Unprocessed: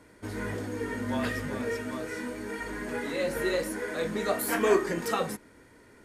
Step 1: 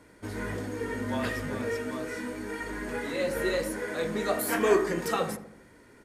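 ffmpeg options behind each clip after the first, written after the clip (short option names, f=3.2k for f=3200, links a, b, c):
-filter_complex "[0:a]asplit=2[a][b];[b]adelay=80,lowpass=f=1.3k:p=1,volume=-10.5dB,asplit=2[c][d];[d]adelay=80,lowpass=f=1.3k:p=1,volume=0.52,asplit=2[e][f];[f]adelay=80,lowpass=f=1.3k:p=1,volume=0.52,asplit=2[g][h];[h]adelay=80,lowpass=f=1.3k:p=1,volume=0.52,asplit=2[i][j];[j]adelay=80,lowpass=f=1.3k:p=1,volume=0.52,asplit=2[k][l];[l]adelay=80,lowpass=f=1.3k:p=1,volume=0.52[m];[a][c][e][g][i][k][m]amix=inputs=7:normalize=0"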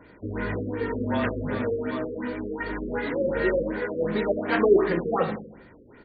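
-af "afftfilt=real='re*lt(b*sr/1024,550*pow(4800/550,0.5+0.5*sin(2*PI*2.7*pts/sr)))':imag='im*lt(b*sr/1024,550*pow(4800/550,0.5+0.5*sin(2*PI*2.7*pts/sr)))':win_size=1024:overlap=0.75,volume=5dB"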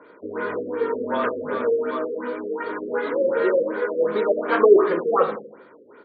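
-af "highpass=420,equalizer=f=450:t=q:w=4:g=4,equalizer=f=760:t=q:w=4:g=-6,equalizer=f=1.2k:t=q:w=4:g=5,equalizer=f=1.9k:t=q:w=4:g=-10,equalizer=f=2.7k:t=q:w=4:g=-9,lowpass=f=3.4k:w=0.5412,lowpass=f=3.4k:w=1.3066,volume=6dB"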